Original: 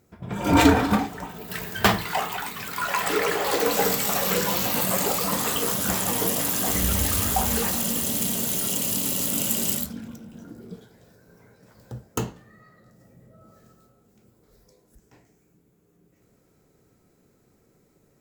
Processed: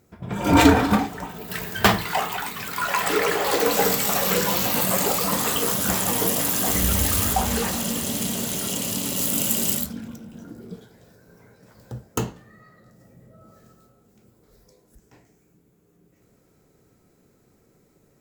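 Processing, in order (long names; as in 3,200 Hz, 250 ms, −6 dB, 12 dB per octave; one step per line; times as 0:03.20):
0:07.33–0:09.17: high-shelf EQ 10,000 Hz −8 dB
level +2 dB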